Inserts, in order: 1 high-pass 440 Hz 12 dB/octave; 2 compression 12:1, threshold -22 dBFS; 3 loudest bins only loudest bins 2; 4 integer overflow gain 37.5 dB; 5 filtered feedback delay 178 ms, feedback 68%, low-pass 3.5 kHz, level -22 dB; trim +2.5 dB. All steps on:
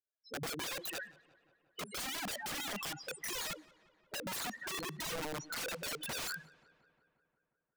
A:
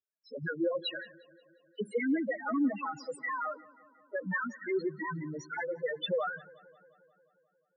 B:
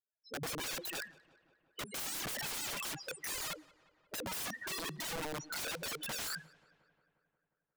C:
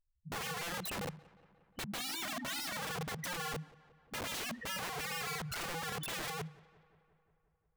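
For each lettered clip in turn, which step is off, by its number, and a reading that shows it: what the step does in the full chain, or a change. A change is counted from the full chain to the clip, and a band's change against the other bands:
4, crest factor change +5.5 dB; 2, mean gain reduction 3.0 dB; 1, 125 Hz band +5.0 dB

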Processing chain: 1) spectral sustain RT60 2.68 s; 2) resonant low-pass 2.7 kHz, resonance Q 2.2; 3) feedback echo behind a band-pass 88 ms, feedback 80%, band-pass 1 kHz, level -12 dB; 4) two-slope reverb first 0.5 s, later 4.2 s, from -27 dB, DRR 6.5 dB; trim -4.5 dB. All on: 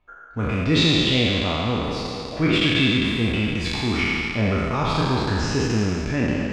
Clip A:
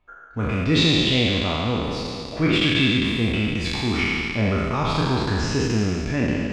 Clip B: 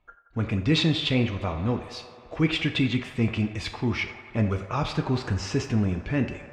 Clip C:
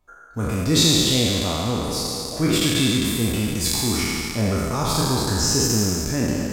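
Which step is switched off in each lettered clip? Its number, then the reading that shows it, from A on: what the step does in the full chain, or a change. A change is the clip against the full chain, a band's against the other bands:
3, echo-to-direct -4.5 dB to -6.5 dB; 1, 125 Hz band +4.5 dB; 2, 8 kHz band +16.0 dB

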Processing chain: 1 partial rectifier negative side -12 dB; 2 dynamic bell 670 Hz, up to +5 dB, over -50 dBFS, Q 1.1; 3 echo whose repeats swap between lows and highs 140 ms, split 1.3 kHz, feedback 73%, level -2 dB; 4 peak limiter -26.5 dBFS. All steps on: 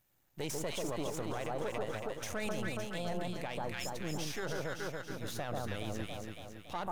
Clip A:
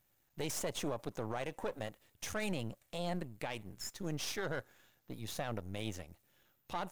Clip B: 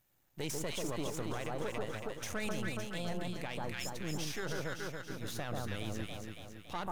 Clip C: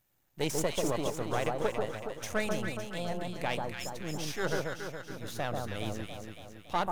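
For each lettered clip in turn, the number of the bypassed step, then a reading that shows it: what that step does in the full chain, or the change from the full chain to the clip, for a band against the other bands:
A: 3, momentary loudness spread change +3 LU; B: 2, 500 Hz band -2.5 dB; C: 4, mean gain reduction 2.5 dB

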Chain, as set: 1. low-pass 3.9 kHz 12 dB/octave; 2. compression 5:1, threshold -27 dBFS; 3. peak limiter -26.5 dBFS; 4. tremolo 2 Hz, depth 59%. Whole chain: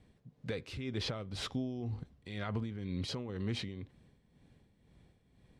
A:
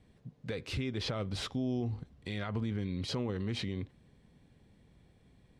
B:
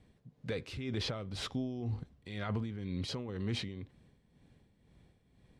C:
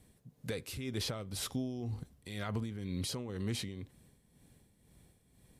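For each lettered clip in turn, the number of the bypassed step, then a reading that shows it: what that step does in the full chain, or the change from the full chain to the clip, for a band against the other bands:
4, crest factor change -3.0 dB; 2, mean gain reduction 4.0 dB; 1, 8 kHz band +9.5 dB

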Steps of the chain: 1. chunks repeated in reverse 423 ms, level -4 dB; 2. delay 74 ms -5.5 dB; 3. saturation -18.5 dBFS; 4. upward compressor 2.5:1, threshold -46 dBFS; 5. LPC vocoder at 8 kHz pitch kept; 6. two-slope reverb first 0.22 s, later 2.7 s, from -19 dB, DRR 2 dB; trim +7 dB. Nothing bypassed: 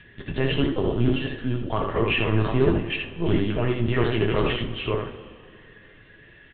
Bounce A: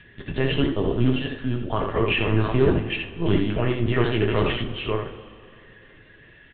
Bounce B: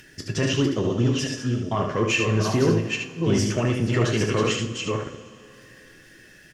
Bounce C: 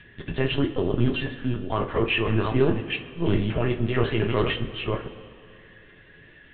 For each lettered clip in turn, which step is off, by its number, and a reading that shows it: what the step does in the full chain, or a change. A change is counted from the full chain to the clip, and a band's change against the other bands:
3, distortion -22 dB; 5, loudness change +1.0 LU; 2, loudness change -1.0 LU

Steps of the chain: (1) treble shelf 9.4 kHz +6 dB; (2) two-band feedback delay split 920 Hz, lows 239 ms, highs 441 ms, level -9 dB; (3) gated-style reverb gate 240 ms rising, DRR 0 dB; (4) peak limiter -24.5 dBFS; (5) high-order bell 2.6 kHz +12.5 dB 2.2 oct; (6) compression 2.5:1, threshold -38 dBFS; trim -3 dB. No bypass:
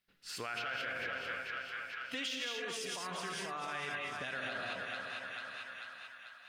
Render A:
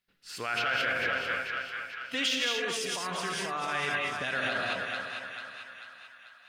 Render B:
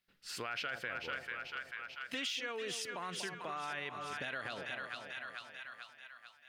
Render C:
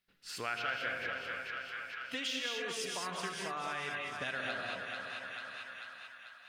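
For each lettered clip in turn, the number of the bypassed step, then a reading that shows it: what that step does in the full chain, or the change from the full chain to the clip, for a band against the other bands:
6, mean gain reduction 6.0 dB; 3, momentary loudness spread change +2 LU; 4, mean gain reduction 2.0 dB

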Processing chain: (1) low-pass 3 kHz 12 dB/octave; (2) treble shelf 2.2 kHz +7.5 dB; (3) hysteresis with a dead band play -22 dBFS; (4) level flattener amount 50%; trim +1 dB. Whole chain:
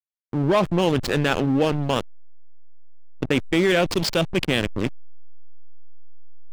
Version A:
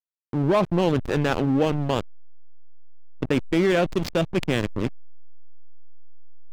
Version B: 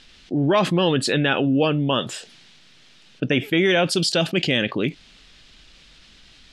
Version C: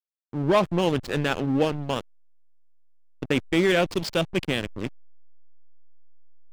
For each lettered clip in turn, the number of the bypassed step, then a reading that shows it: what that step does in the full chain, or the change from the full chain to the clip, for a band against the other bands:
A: 2, 4 kHz band -5.5 dB; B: 3, distortion -6 dB; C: 4, momentary loudness spread change +5 LU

